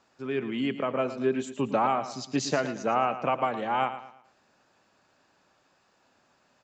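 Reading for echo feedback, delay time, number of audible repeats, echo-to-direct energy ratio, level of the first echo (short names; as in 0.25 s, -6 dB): 36%, 0.112 s, 3, -11.5 dB, -12.0 dB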